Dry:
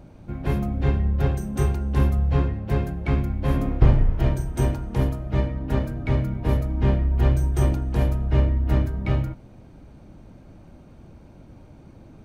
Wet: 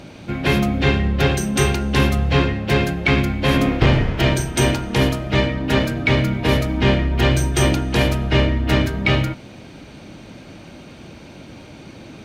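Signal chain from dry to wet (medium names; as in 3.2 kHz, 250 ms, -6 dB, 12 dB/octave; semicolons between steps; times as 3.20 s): frequency weighting D; in parallel at +1 dB: peak limiter -19.5 dBFS, peak gain reduction 11 dB; on the sum: trim +4.5 dB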